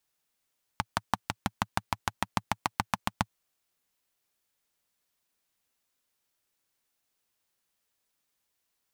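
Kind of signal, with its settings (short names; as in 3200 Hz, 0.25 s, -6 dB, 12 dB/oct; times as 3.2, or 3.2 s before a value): single-cylinder engine model, changing speed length 2.48 s, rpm 700, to 900, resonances 110/190/860 Hz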